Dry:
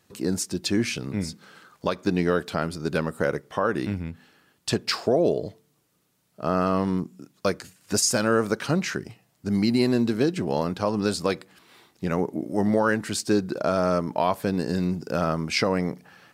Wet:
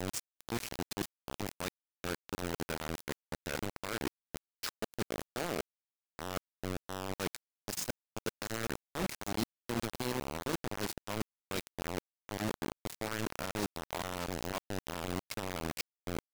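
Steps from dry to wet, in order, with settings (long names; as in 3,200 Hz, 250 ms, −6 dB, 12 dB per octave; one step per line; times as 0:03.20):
slices reordered back to front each 255 ms, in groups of 2
reversed playback
downward compressor 5 to 1, threshold −33 dBFS, peak gain reduction 15 dB
reversed playback
low-shelf EQ 180 Hz +3.5 dB
mains-hum notches 50/100/150 Hz
tuned comb filter 110 Hz, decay 1.3 s, harmonics all, mix 60%
on a send: delay that swaps between a low-pass and a high-pass 360 ms, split 1,300 Hz, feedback 65%, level −13 dB
on the sum: bit-depth reduction 6 bits, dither none
level +3.5 dB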